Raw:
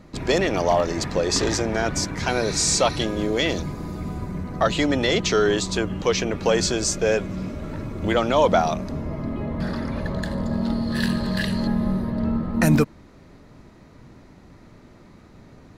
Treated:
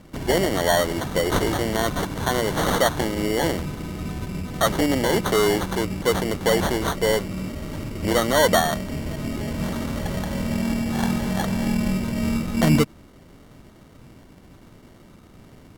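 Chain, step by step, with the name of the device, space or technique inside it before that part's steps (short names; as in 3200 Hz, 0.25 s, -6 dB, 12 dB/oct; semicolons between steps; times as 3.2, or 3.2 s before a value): crushed at another speed (playback speed 1.25×; sample-and-hold 14×; playback speed 0.8×)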